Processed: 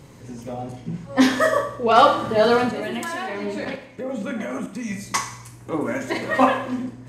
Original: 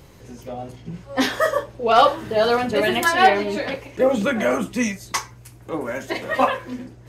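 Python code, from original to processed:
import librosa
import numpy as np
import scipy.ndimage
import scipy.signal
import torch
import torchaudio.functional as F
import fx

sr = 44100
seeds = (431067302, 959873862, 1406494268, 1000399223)

y = fx.graphic_eq(x, sr, hz=(125, 250, 500, 1000, 2000, 4000, 8000), db=(11, 10, 4, 7, 6, 3, 10))
y = fx.level_steps(y, sr, step_db=21, at=(2.69, 4.92))
y = fx.rev_schroeder(y, sr, rt60_s=0.7, comb_ms=27, drr_db=6.5)
y = y * librosa.db_to_amplitude(-8.0)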